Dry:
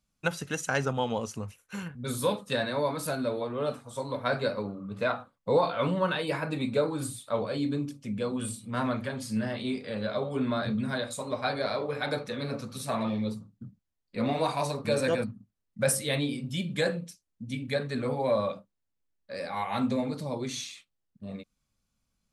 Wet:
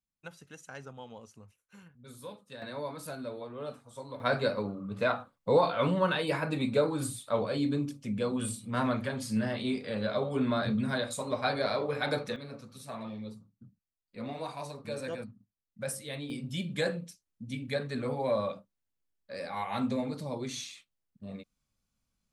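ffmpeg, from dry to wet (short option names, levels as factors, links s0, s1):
-af "asetnsamples=n=441:p=0,asendcmd='2.62 volume volume -9dB;4.2 volume volume 0dB;12.36 volume volume -10.5dB;16.3 volume volume -3dB',volume=0.141"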